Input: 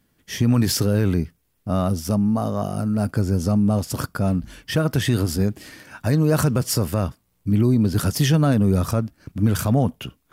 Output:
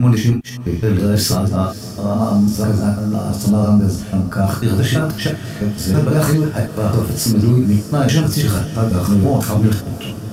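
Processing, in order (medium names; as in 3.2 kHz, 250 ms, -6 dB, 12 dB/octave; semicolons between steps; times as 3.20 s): slices played last to first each 165 ms, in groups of 4; echo that smears into a reverb 593 ms, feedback 68%, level -15 dB; gated-style reverb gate 90 ms flat, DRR -1 dB; trim +1 dB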